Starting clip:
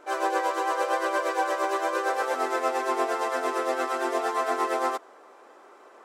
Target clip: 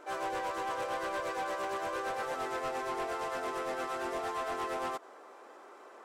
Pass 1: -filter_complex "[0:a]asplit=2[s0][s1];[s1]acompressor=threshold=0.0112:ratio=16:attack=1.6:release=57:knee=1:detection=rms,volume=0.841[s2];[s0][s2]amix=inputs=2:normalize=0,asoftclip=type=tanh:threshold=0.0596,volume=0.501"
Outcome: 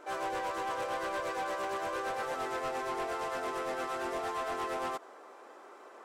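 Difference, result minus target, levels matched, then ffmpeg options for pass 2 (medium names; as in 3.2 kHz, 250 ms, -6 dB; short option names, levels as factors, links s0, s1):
compression: peak gain reduction -7.5 dB
-filter_complex "[0:a]asplit=2[s0][s1];[s1]acompressor=threshold=0.00447:ratio=16:attack=1.6:release=57:knee=1:detection=rms,volume=0.841[s2];[s0][s2]amix=inputs=2:normalize=0,asoftclip=type=tanh:threshold=0.0596,volume=0.501"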